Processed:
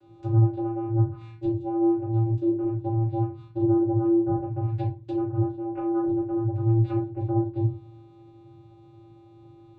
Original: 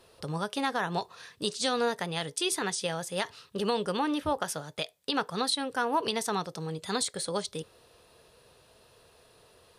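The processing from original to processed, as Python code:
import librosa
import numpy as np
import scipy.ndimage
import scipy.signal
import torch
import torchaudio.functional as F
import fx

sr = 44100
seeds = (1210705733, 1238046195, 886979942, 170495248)

y = fx.env_lowpass_down(x, sr, base_hz=460.0, full_db=-28.0)
y = fx.bass_treble(y, sr, bass_db=5, treble_db=-8)
y = fx.vocoder(y, sr, bands=8, carrier='square', carrier_hz=113.0)
y = fx.room_shoebox(y, sr, seeds[0], volume_m3=140.0, walls='furnished', distance_m=3.3)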